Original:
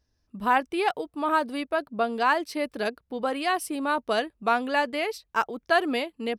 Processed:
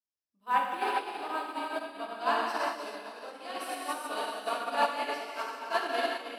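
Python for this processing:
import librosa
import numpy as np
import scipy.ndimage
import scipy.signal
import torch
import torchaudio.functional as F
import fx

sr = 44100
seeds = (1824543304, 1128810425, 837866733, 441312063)

y = fx.highpass(x, sr, hz=810.0, slope=6)
y = fx.peak_eq(y, sr, hz=1800.0, db=-5.5, octaves=0.86)
y = fx.echo_diffused(y, sr, ms=477, feedback_pct=48, wet_db=-7.5)
y = fx.rev_gated(y, sr, seeds[0], gate_ms=450, shape='flat', drr_db=-8.0)
y = fx.upward_expand(y, sr, threshold_db=-31.0, expansion=2.5)
y = y * 10.0 ** (-5.0 / 20.0)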